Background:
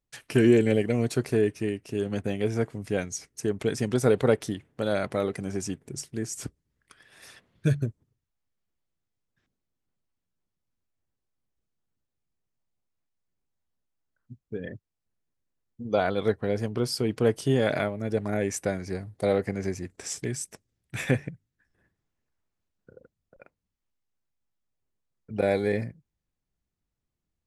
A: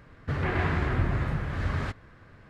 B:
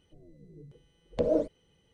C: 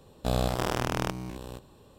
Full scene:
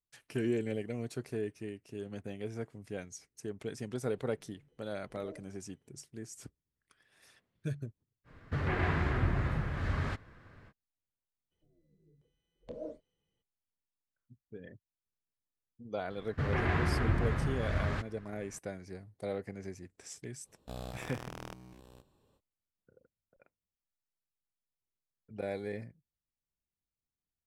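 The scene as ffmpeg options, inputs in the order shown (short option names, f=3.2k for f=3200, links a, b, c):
-filter_complex "[2:a]asplit=2[a][b];[1:a]asplit=2[c][d];[0:a]volume=-13dB[e];[a]alimiter=level_in=1dB:limit=-24dB:level=0:latency=1:release=268,volume=-1dB[f];[b]asplit=2[g][h];[h]adelay=26,volume=-8dB[i];[g][i]amix=inputs=2:normalize=0[j];[f]atrim=end=1.93,asetpts=PTS-STARTPTS,volume=-15.5dB,afade=t=in:d=0.004:c=hsin,afade=t=out:st=1.926:d=0.004:c=hsin,adelay=175077S[k];[c]atrim=end=2.49,asetpts=PTS-STARTPTS,volume=-4dB,afade=t=in:d=0.05,afade=t=out:st=2.44:d=0.05,adelay=8240[l];[j]atrim=end=1.93,asetpts=PTS-STARTPTS,volume=-17.5dB,afade=t=in:d=0.02,afade=t=out:st=1.91:d=0.02,adelay=11500[m];[d]atrim=end=2.49,asetpts=PTS-STARTPTS,volume=-3.5dB,afade=t=in:d=0.004:c=hsin,afade=t=out:st=2.486:d=0.004:c=hsin,adelay=16100[n];[3:a]atrim=end=1.98,asetpts=PTS-STARTPTS,volume=-16dB,afade=t=in:d=0.05,afade=t=out:st=1.93:d=0.05,adelay=20430[o];[e][k][l][m][n][o]amix=inputs=6:normalize=0"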